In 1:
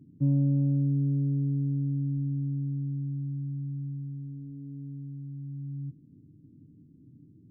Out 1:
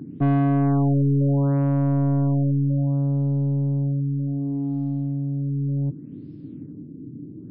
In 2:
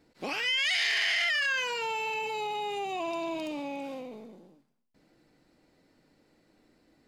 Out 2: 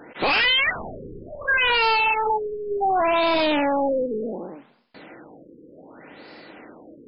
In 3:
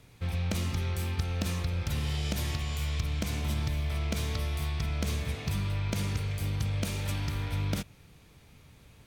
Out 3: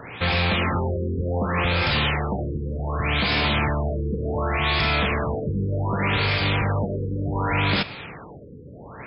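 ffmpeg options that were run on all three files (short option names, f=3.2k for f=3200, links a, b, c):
-filter_complex "[0:a]asplit=2[a][b];[b]highpass=f=720:p=1,volume=30dB,asoftclip=type=tanh:threshold=-16.5dB[c];[a][c]amix=inputs=2:normalize=0,lowpass=f=5.1k:p=1,volume=-6dB,afftfilt=real='re*lt(b*sr/1024,510*pow(5400/510,0.5+0.5*sin(2*PI*0.67*pts/sr)))':imag='im*lt(b*sr/1024,510*pow(5400/510,0.5+0.5*sin(2*PI*0.67*pts/sr)))':win_size=1024:overlap=0.75,volume=4dB"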